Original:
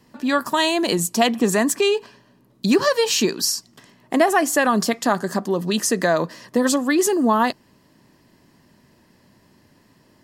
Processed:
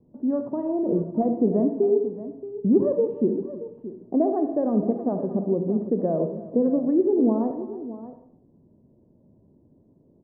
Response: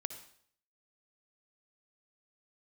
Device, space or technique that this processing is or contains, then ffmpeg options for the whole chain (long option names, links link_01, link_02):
next room: -filter_complex "[0:a]lowpass=frequency=570:width=0.5412,lowpass=frequency=570:width=1.3066,aecho=1:1:42|319|625:0.15|0.141|0.2[link_01];[1:a]atrim=start_sample=2205[link_02];[link_01][link_02]afir=irnorm=-1:irlink=0"